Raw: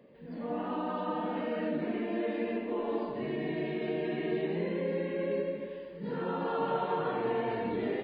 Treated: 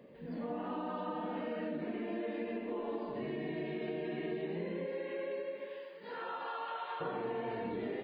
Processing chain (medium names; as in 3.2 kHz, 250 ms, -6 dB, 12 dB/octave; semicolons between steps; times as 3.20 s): 4.85–7.00 s: high-pass 360 Hz -> 1.3 kHz 12 dB/octave; compression 3:1, threshold -39 dBFS, peak gain reduction 9 dB; trim +1.5 dB